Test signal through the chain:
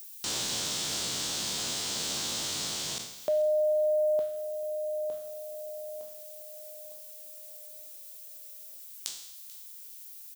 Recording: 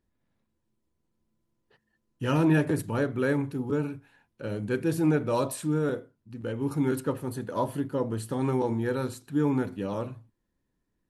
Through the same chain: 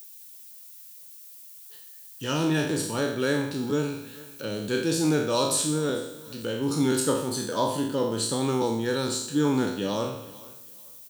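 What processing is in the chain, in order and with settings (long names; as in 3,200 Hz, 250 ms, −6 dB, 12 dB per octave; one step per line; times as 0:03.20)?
peak hold with a decay on every bin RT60 0.70 s
high-pass filter 130 Hz 12 dB per octave
flat-topped bell 5,100 Hz +13 dB
speech leveller within 4 dB 2 s
background noise violet −54 dBFS
on a send: repeating echo 438 ms, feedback 25%, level −22.5 dB
on the sum: one half of a high-frequency compander encoder only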